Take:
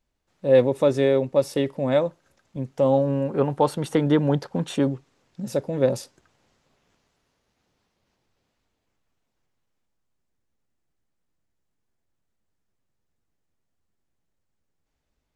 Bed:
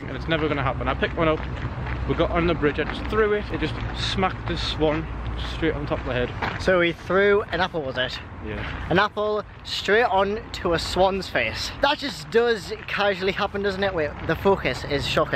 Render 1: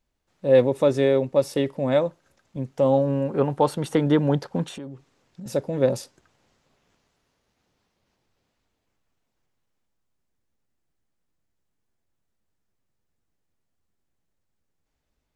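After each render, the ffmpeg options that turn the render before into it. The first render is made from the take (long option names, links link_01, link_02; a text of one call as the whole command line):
ffmpeg -i in.wav -filter_complex "[0:a]asettb=1/sr,asplit=3[link_01][link_02][link_03];[link_01]atrim=end=4.684[link_04];[link_02]atrim=start=4.68:end=5.46,asetpts=PTS-STARTPTS,afade=type=in:duration=0.004:curve=qsin,afade=type=out:start_time=0.776:duration=0.004:curve=qsin,acompressor=threshold=-36dB:ratio=4:attack=3.2:release=140:knee=1:detection=peak[link_05];[link_03]atrim=start=5.456[link_06];[link_04][link_05]acrossfade=duration=0.004:curve1=hsin:curve2=qsin[link_07];[link_07][link_06]acrossfade=duration=0.004:curve1=qsin:curve2=hsin" out.wav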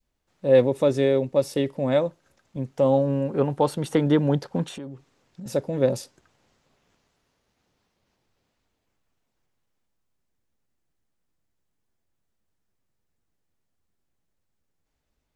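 ffmpeg -i in.wav -af "adynamicequalizer=threshold=0.02:dfrequency=1100:dqfactor=0.78:tfrequency=1100:tqfactor=0.78:attack=5:release=100:ratio=0.375:range=2.5:mode=cutabove:tftype=bell" out.wav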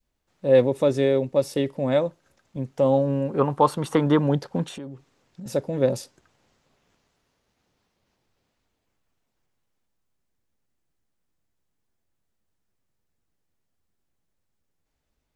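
ffmpeg -i in.wav -filter_complex "[0:a]asettb=1/sr,asplit=3[link_01][link_02][link_03];[link_01]atrim=end=3.394[link_04];[link_02]atrim=start=3.39:end=4.27,asetpts=PTS-STARTPTS,afade=type=in:duration=0.004:curve=qsin,afade=type=out:start_time=0.876:duration=0.004:curve=qsin,equalizer=frequency=1100:width=2.6:gain=12.5[link_05];[link_03]atrim=start=4.266[link_06];[link_04][link_05]acrossfade=duration=0.004:curve1=hsin:curve2=qsin[link_07];[link_07][link_06]acrossfade=duration=0.004:curve1=qsin:curve2=hsin" out.wav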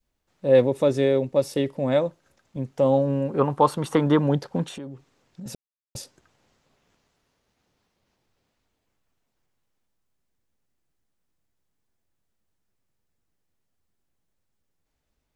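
ffmpeg -i in.wav -filter_complex "[0:a]asplit=3[link_01][link_02][link_03];[link_01]atrim=end=5.55,asetpts=PTS-STARTPTS,afade=type=out:start_time=5.546:duration=0.004:curve=hsin[link_04];[link_02]atrim=start=5.55:end=5.95,asetpts=PTS-STARTPTS,volume=0[link_05];[link_03]atrim=start=5.95,asetpts=PTS-STARTPTS,afade=type=in:duration=0.004:curve=hsin[link_06];[link_04][link_05][link_06]concat=n=3:v=0:a=1" out.wav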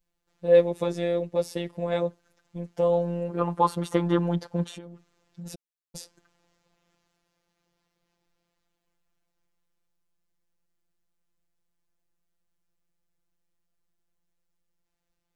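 ffmpeg -i in.wav -af "afftfilt=real='hypot(re,im)*cos(PI*b)':imag='0':win_size=1024:overlap=0.75" out.wav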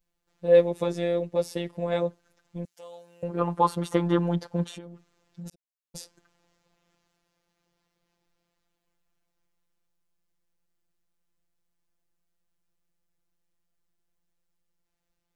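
ffmpeg -i in.wav -filter_complex "[0:a]asettb=1/sr,asplit=3[link_01][link_02][link_03];[link_01]atrim=end=2.654[link_04];[link_02]atrim=start=2.65:end=3.23,asetpts=PTS-STARTPTS,afade=type=in:duration=0.004:curve=qsin,afade=type=out:start_time=0.576:duration=0.004:curve=qsin,aderivative[link_05];[link_03]atrim=start=3.226[link_06];[link_04][link_05]acrossfade=duration=0.004:curve1=hsin:curve2=qsin[link_07];[link_07][link_06]acrossfade=duration=0.004:curve1=qsin:curve2=hsin,asplit=2[link_08][link_09];[link_08]atrim=end=5.5,asetpts=PTS-STARTPTS,afade=type=out:start_time=5.496:duration=0.004:curve=hsin[link_10];[link_09]atrim=start=5.5,asetpts=PTS-STARTPTS,afade=type=in:duration=0.49[link_11];[link_10][link_11]concat=n=2:v=0:a=1" out.wav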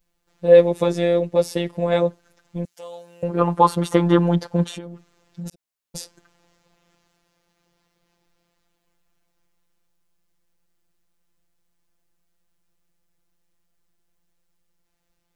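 ffmpeg -i in.wav -af "volume=7.5dB,alimiter=limit=-1dB:level=0:latency=1" out.wav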